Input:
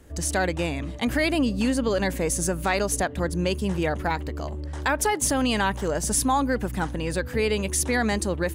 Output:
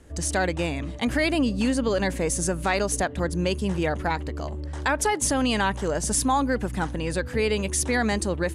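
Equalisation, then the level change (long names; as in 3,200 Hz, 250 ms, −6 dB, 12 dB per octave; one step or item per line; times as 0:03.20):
low-pass filter 11,000 Hz 24 dB per octave
0.0 dB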